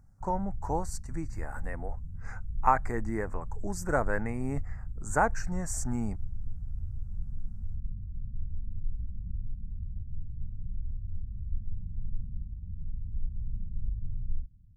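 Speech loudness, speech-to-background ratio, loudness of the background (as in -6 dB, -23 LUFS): -33.0 LUFS, 8.5 dB, -41.5 LUFS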